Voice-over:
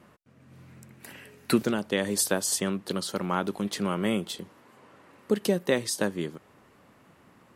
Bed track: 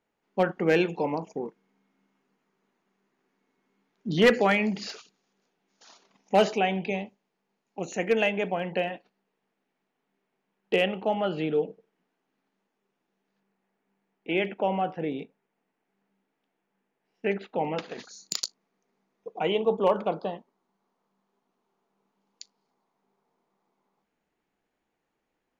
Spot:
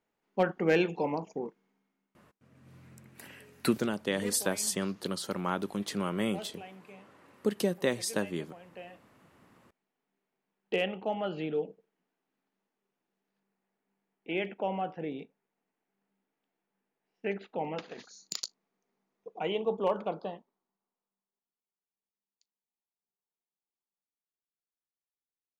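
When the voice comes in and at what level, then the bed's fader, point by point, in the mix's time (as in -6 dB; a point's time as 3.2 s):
2.15 s, -4.0 dB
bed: 1.66 s -3 dB
2.53 s -22 dB
8.67 s -22 dB
9.29 s -6 dB
20.32 s -6 dB
21.72 s -29.5 dB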